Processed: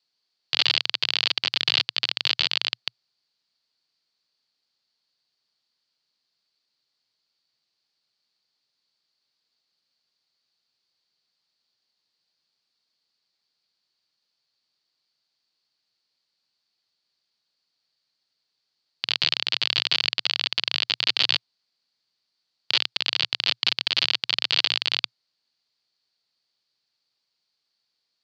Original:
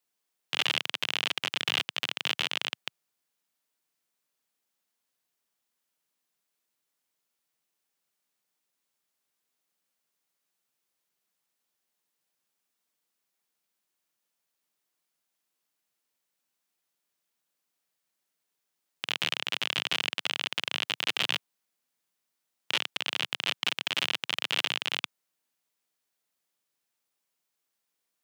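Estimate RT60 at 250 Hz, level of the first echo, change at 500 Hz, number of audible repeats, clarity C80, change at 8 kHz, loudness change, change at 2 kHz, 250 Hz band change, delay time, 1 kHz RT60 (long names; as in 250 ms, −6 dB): no reverb audible, no echo audible, 0.0 dB, no echo audible, no reverb audible, −1.0 dB, +7.0 dB, +2.5 dB, +0.5 dB, no echo audible, no reverb audible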